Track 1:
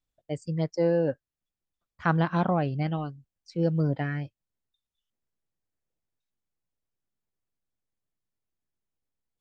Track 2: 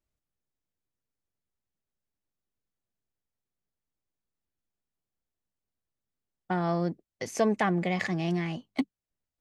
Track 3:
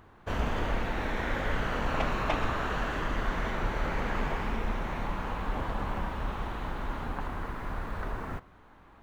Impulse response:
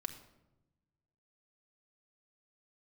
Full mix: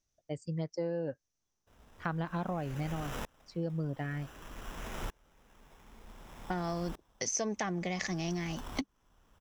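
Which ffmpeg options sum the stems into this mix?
-filter_complex "[0:a]volume=-4.5dB[a];[1:a]lowpass=f=6k:t=q:w=9.1,volume=-1dB[b];[2:a]acrusher=samples=10:mix=1:aa=0.000001,aeval=exprs='val(0)*pow(10,-33*if(lt(mod(-0.54*n/s,1),2*abs(-0.54)/1000),1-mod(-0.54*n/s,1)/(2*abs(-0.54)/1000),(mod(-0.54*n/s,1)-2*abs(-0.54)/1000)/(1-2*abs(-0.54)/1000))/20)':c=same,adelay=1400,volume=-6dB[c];[a][b][c]amix=inputs=3:normalize=0,acompressor=threshold=-32dB:ratio=4"

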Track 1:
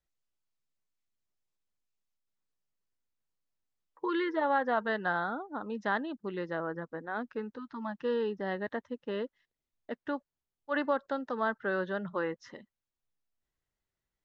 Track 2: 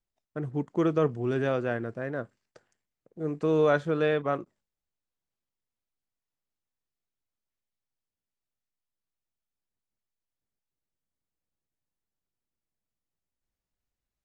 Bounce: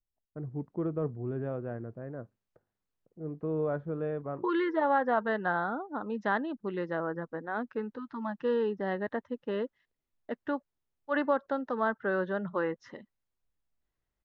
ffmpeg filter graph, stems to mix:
-filter_complex "[0:a]highshelf=f=3.7k:g=-10,adelay=400,volume=2.5dB[a];[1:a]lowpass=1.1k,lowshelf=f=150:g=9.5,volume=-9dB[b];[a][b]amix=inputs=2:normalize=0,adynamicequalizer=threshold=0.00891:dfrequency=1900:dqfactor=0.7:tfrequency=1900:tqfactor=0.7:attack=5:release=100:ratio=0.375:range=2:mode=cutabove:tftype=highshelf"

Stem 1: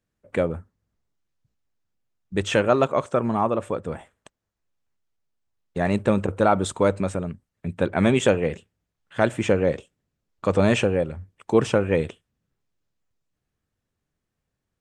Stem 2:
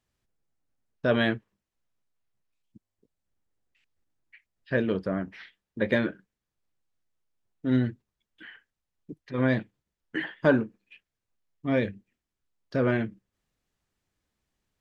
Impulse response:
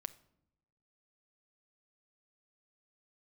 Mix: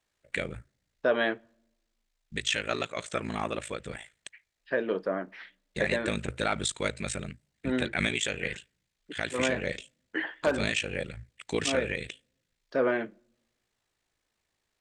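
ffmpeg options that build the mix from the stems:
-filter_complex "[0:a]equalizer=f=125:t=o:w=1:g=-4,equalizer=f=250:t=o:w=1:g=-5,equalizer=f=500:t=o:w=1:g=-4,equalizer=f=1k:t=o:w=1:g=-10,equalizer=f=2k:t=o:w=1:g=11,equalizer=f=4k:t=o:w=1:g=10,equalizer=f=8k:t=o:w=1:g=9,alimiter=limit=-10.5dB:level=0:latency=1:release=329,aeval=exprs='val(0)*sin(2*PI*27*n/s)':c=same,volume=-2dB,asplit=2[a][b];[b]volume=-19dB[c];[1:a]highpass=430,highshelf=f=2.4k:g=-9,aeval=exprs='0.168*(abs(mod(val(0)/0.168+3,4)-2)-1)':c=same,volume=2dB,asplit=2[d][e];[e]volume=-9dB[f];[2:a]atrim=start_sample=2205[g];[c][f]amix=inputs=2:normalize=0[h];[h][g]afir=irnorm=-1:irlink=0[i];[a][d][i]amix=inputs=3:normalize=0,alimiter=limit=-15.5dB:level=0:latency=1:release=217"

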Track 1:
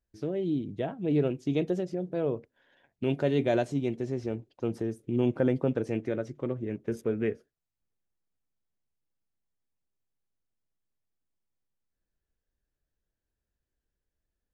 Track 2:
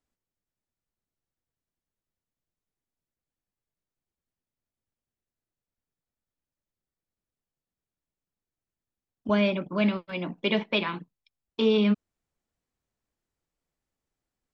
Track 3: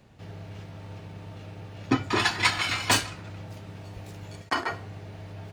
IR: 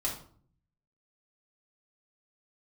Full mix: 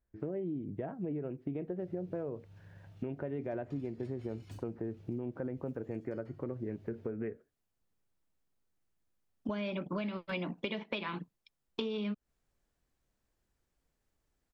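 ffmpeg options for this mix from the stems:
-filter_complex "[0:a]lowpass=f=2k:w=0.5412,lowpass=f=2k:w=1.3066,volume=2dB[a];[1:a]acompressor=threshold=-27dB:ratio=6,adelay=200,volume=2.5dB[b];[2:a]equalizer=f=250:t=o:w=1:g=-9,equalizer=f=500:t=o:w=1:g=-9,equalizer=f=1k:t=o:w=1:g=-10,equalizer=f=2k:t=o:w=1:g=-7,equalizer=f=4k:t=o:w=1:g=-5,equalizer=f=8k:t=o:w=1:g=-5,acrossover=split=420[c][d];[d]acompressor=threshold=-49dB:ratio=6[e];[c][e]amix=inputs=2:normalize=0,adelay=1600,volume=-10.5dB[f];[a][f]amix=inputs=2:normalize=0,alimiter=limit=-24dB:level=0:latency=1:release=364,volume=0dB[g];[b][g]amix=inputs=2:normalize=0,acompressor=threshold=-34dB:ratio=5"

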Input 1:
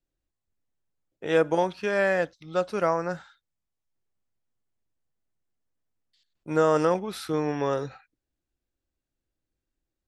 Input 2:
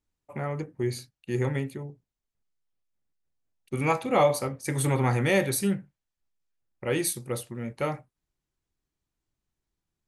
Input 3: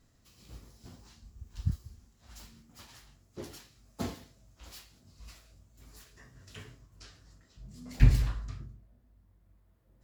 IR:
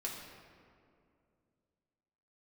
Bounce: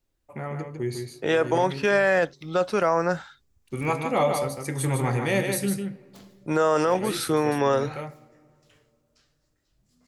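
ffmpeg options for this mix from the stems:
-filter_complex "[0:a]acrossover=split=460|3000[a][b][c];[a]acompressor=threshold=-31dB:ratio=6[d];[d][b][c]amix=inputs=3:normalize=0,alimiter=limit=-19dB:level=0:latency=1:release=14,acontrast=34,volume=1.5dB,asplit=2[e][f];[1:a]volume=-2.5dB,asplit=3[g][h][i];[h]volume=-12.5dB[j];[i]volume=-4dB[k];[2:a]lowshelf=f=400:g=-10,aeval=exprs='(mod(35.5*val(0)+1,2)-1)/35.5':c=same,adelay=2150,volume=-11.5dB[l];[f]apad=whole_len=444384[m];[g][m]sidechaincompress=threshold=-39dB:ratio=8:attack=16:release=170[n];[3:a]atrim=start_sample=2205[o];[j][o]afir=irnorm=-1:irlink=0[p];[k]aecho=0:1:152:1[q];[e][n][l][p][q]amix=inputs=5:normalize=0"

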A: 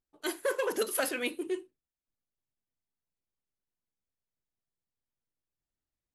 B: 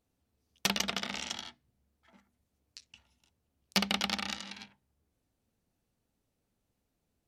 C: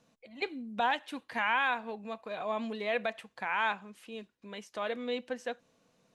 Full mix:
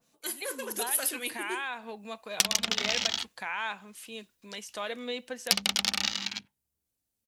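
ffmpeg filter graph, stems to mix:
-filter_complex "[0:a]volume=-9.5dB[a];[1:a]afwtdn=0.00398,adelay=1750,volume=0dB[b];[2:a]alimiter=level_in=0.5dB:limit=-24dB:level=0:latency=1:release=110,volume=-0.5dB,adynamicequalizer=threshold=0.00355:dfrequency=2600:dqfactor=0.7:tfrequency=2600:tqfactor=0.7:attack=5:release=100:ratio=0.375:range=2:mode=cutabove:tftype=highshelf,volume=-6.5dB[c];[a][b][c]amix=inputs=3:normalize=0,dynaudnorm=f=320:g=9:m=5dB,crystalizer=i=4.5:c=0,acompressor=threshold=-22dB:ratio=6"

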